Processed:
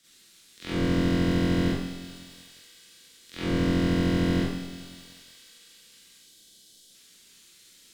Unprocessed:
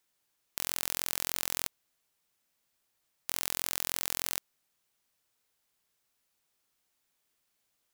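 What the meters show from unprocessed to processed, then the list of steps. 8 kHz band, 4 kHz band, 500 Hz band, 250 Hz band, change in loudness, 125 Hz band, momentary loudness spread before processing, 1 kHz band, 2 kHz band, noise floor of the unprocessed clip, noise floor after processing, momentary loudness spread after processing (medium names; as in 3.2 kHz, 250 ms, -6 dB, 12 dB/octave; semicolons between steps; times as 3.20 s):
-10.5 dB, +1.5 dB, +18.5 dB, +28.5 dB, +6.0 dB, +27.5 dB, 7 LU, +6.5 dB, +6.0 dB, -79 dBFS, -56 dBFS, 19 LU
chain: spectral selection erased 6.17–6.90 s, 1–3.1 kHz; low-pass that closes with the level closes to 590 Hz, closed at -43.5 dBFS; graphic EQ 500/1000/2000/4000/8000 Hz +12/-9/+5/+11/+7 dB; waveshaping leveller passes 2; compressor with a negative ratio -41 dBFS, ratio -0.5; feedback echo behind a high-pass 228 ms, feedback 77%, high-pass 4.2 kHz, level -7 dB; frequency shift -210 Hz; Schroeder reverb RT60 0.63 s, combs from 33 ms, DRR -9.5 dB; bit-crushed delay 183 ms, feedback 55%, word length 9-bit, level -12 dB; trim +5.5 dB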